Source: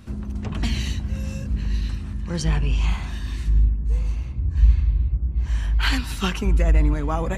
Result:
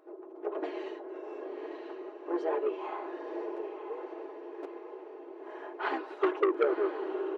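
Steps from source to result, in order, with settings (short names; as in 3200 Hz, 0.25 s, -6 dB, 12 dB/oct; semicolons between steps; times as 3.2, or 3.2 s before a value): tape stop at the end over 0.85 s; Chebyshev low-pass 570 Hz, order 2; notch 540 Hz, Q 12; comb 4.8 ms, depth 83%; AGC gain up to 7 dB; harmoniser -3 st -9 dB, +4 st -17 dB; hard clip -2 dBFS, distortion -29 dB; brick-wall FIR high-pass 300 Hz; diffused feedback echo 0.976 s, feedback 51%, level -7.5 dB; core saturation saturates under 1000 Hz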